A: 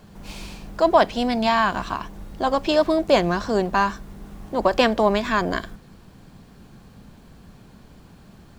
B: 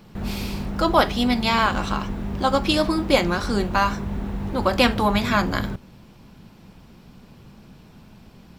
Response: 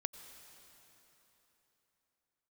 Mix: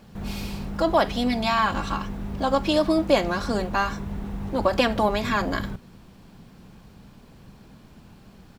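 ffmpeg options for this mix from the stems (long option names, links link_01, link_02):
-filter_complex "[0:a]volume=-4dB[link_01];[1:a]alimiter=limit=-12dB:level=0:latency=1,adelay=0.3,volume=-5dB[link_02];[link_01][link_02]amix=inputs=2:normalize=0"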